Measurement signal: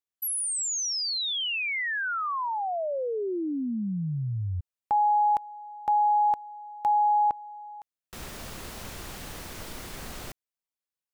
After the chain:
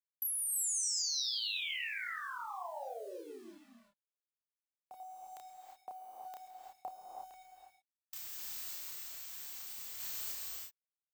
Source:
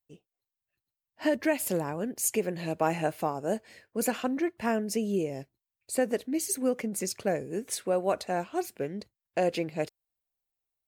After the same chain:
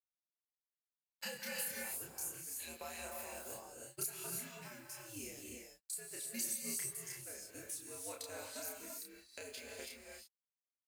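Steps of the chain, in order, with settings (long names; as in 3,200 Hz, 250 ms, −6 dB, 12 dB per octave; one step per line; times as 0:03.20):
first-order pre-emphasis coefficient 0.97
noise reduction from a noise print of the clip's start 17 dB
noise gate −54 dBFS, range −23 dB
high-shelf EQ 6,900 Hz +2 dB
downward compressor 5 to 1, threshold −48 dBFS
frequency shifter −88 Hz
sample-and-hold tremolo 1.6 Hz, depth 70%
bit-depth reduction 12 bits, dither none
double-tracking delay 30 ms −2.5 dB
reverb whose tail is shaped and stops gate 370 ms rising, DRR 0.5 dB
level +7 dB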